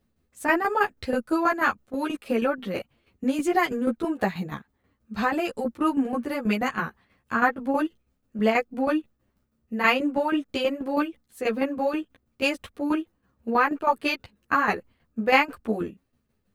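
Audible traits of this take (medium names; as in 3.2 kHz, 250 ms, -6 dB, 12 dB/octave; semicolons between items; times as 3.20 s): tremolo saw down 6.2 Hz, depth 70%; a shimmering, thickened sound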